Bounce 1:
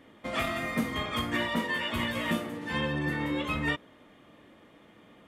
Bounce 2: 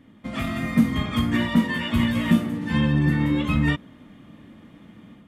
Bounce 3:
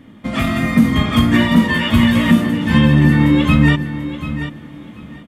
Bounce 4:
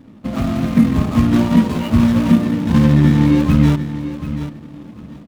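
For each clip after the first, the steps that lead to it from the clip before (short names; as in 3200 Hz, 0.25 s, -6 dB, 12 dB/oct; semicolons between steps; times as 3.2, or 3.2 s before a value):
resonant low shelf 310 Hz +9.5 dB, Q 1.5; AGC gain up to 6 dB; gain -3 dB
feedback echo 0.736 s, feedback 18%, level -12 dB; maximiser +10.5 dB; gain -1 dB
median filter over 25 samples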